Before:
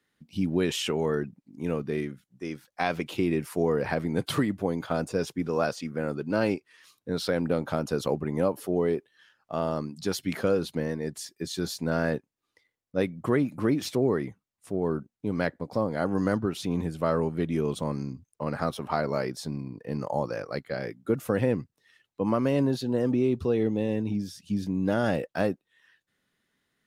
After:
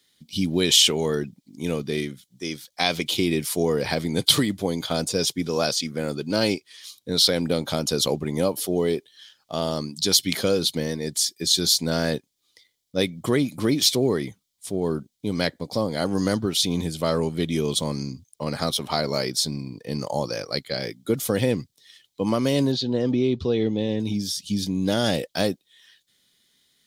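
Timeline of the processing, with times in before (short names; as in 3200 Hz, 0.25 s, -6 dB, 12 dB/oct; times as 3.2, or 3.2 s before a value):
22.72–24 air absorption 160 m
whole clip: resonant high shelf 2300 Hz +12.5 dB, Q 1.5; notch 2700 Hz, Q 6.9; gain +3 dB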